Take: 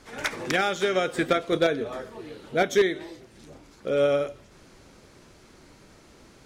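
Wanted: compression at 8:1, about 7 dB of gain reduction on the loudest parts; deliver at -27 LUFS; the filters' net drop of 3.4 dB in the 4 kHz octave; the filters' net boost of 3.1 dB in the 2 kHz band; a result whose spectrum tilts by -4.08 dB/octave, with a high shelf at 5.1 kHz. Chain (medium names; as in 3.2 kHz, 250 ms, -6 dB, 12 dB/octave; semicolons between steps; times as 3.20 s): peaking EQ 2 kHz +5 dB; peaking EQ 4 kHz -9 dB; treble shelf 5.1 kHz +7 dB; compression 8:1, threshold -23 dBFS; trim +3 dB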